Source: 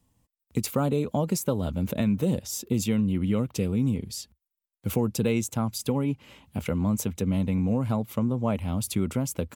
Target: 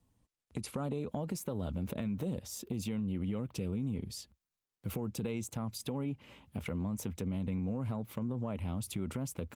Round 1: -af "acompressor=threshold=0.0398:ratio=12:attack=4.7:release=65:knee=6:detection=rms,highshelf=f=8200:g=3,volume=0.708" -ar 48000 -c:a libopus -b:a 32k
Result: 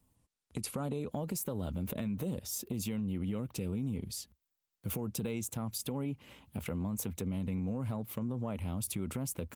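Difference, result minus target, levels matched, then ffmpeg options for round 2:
8 kHz band +4.5 dB
-af "acompressor=threshold=0.0398:ratio=12:attack=4.7:release=65:knee=6:detection=rms,highshelf=f=8200:g=-8,volume=0.708" -ar 48000 -c:a libopus -b:a 32k

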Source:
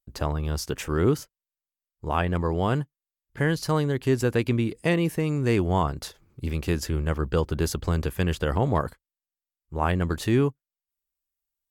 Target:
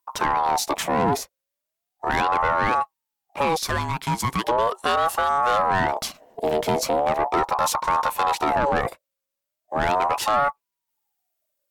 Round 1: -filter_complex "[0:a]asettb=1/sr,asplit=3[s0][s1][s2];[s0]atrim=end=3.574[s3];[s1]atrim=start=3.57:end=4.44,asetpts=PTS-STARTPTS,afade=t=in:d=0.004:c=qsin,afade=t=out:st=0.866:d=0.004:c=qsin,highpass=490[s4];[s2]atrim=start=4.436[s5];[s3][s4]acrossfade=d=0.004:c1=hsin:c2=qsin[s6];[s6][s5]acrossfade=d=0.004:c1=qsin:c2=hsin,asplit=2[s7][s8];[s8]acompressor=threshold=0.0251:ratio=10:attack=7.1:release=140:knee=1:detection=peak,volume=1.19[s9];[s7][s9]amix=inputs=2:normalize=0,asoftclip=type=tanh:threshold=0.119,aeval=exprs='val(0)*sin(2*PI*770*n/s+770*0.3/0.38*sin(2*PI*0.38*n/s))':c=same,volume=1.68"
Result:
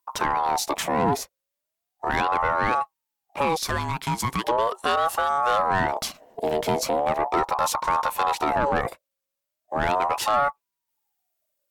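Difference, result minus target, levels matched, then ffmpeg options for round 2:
compression: peak gain reduction +9 dB
-filter_complex "[0:a]asettb=1/sr,asplit=3[s0][s1][s2];[s0]atrim=end=3.574[s3];[s1]atrim=start=3.57:end=4.44,asetpts=PTS-STARTPTS,afade=t=in:d=0.004:c=qsin,afade=t=out:st=0.866:d=0.004:c=qsin,highpass=490[s4];[s2]atrim=start=4.436[s5];[s3][s4]acrossfade=d=0.004:c1=hsin:c2=qsin[s6];[s6][s5]acrossfade=d=0.004:c1=qsin:c2=hsin,asplit=2[s7][s8];[s8]acompressor=threshold=0.0794:ratio=10:attack=7.1:release=140:knee=1:detection=peak,volume=1.19[s9];[s7][s9]amix=inputs=2:normalize=0,asoftclip=type=tanh:threshold=0.119,aeval=exprs='val(0)*sin(2*PI*770*n/s+770*0.3/0.38*sin(2*PI*0.38*n/s))':c=same,volume=1.68"

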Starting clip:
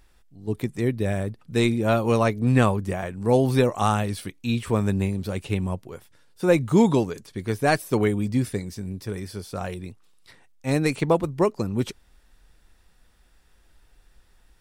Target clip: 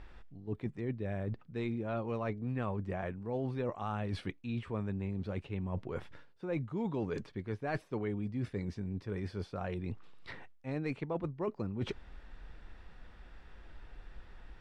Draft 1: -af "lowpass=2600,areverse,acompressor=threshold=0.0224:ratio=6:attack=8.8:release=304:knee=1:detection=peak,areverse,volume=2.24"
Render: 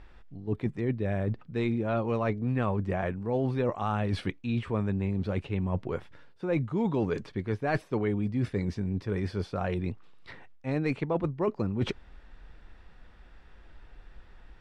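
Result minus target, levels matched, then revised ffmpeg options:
compression: peak gain reduction -7.5 dB
-af "lowpass=2600,areverse,acompressor=threshold=0.00794:ratio=6:attack=8.8:release=304:knee=1:detection=peak,areverse,volume=2.24"

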